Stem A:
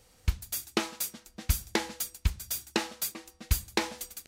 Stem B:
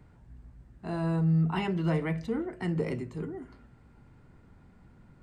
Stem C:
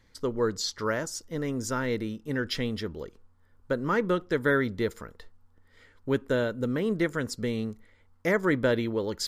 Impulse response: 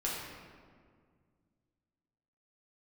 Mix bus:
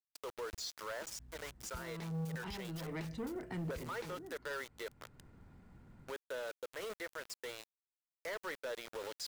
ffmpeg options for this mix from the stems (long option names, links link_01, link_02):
-filter_complex "[0:a]highshelf=frequency=7200:gain=-8,adelay=250,volume=-8.5dB,afade=type=in:start_time=1.25:duration=0.22:silence=0.281838[link_01];[1:a]asoftclip=type=tanh:threshold=-29.5dB,adelay=900,volume=-3dB[link_02];[2:a]highpass=frequency=500:width=0.5412,highpass=frequency=500:width=1.3066,aeval=exprs='0.188*(cos(1*acos(clip(val(0)/0.188,-1,1)))-cos(1*PI/2))+0.00299*(cos(3*acos(clip(val(0)/0.188,-1,1)))-cos(3*PI/2))+0.00376*(cos(4*acos(clip(val(0)/0.188,-1,1)))-cos(4*PI/2))+0.0473*(cos(5*acos(clip(val(0)/0.188,-1,1)))-cos(5*PI/2))':channel_layout=same,adynamicequalizer=threshold=0.00708:dfrequency=1800:dqfactor=3.5:tfrequency=1800:tqfactor=3.5:attack=5:release=100:ratio=0.375:range=1.5:mode=cutabove:tftype=bell,volume=-9dB,asplit=2[link_03][link_04];[link_04]apad=whole_len=269923[link_05];[link_02][link_05]sidechaincompress=threshold=-41dB:ratio=4:attack=16:release=571[link_06];[link_01][link_03]amix=inputs=2:normalize=0,aeval=exprs='val(0)*gte(abs(val(0)),0.0119)':channel_layout=same,alimiter=level_in=6dB:limit=-24dB:level=0:latency=1:release=476,volume=-6dB,volume=0dB[link_07];[link_06][link_07]amix=inputs=2:normalize=0,acrusher=bits=8:mode=log:mix=0:aa=0.000001,alimiter=level_in=11.5dB:limit=-24dB:level=0:latency=1:release=31,volume=-11.5dB"